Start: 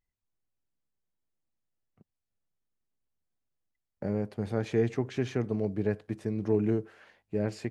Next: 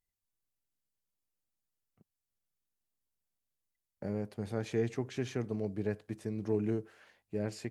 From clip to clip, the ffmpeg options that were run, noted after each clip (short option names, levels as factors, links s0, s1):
-af "aemphasis=mode=production:type=cd,volume=0.562"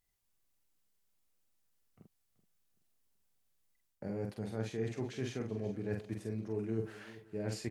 -filter_complex "[0:a]areverse,acompressor=threshold=0.00794:ratio=5,areverse,asplit=2[s0][s1];[s1]adelay=45,volume=0.631[s2];[s0][s2]amix=inputs=2:normalize=0,aecho=1:1:381|762|1143:0.133|0.0533|0.0213,volume=2"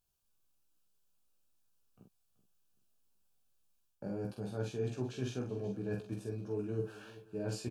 -filter_complex "[0:a]asuperstop=centerf=2000:order=4:qfactor=3.2,asplit=2[s0][s1];[s1]adelay=16,volume=0.631[s2];[s0][s2]amix=inputs=2:normalize=0,volume=0.841"